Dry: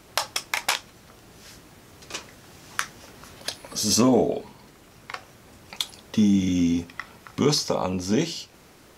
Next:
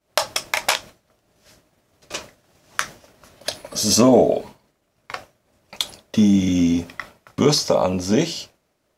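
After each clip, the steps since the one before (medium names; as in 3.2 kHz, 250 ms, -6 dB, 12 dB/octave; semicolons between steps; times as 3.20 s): expander -37 dBFS; peaking EQ 610 Hz +9 dB 0.31 oct; trim +4 dB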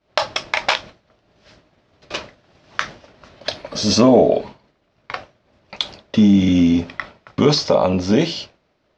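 low-pass 4.8 kHz 24 dB/octave; in parallel at -1 dB: peak limiter -12.5 dBFS, peak gain reduction 10 dB; on the sum: trim -1 dB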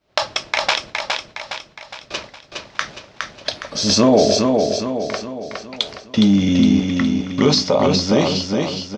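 treble shelf 4.8 kHz +7.5 dB; on a send: feedback delay 413 ms, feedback 48%, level -4 dB; on the sum: trim -1.5 dB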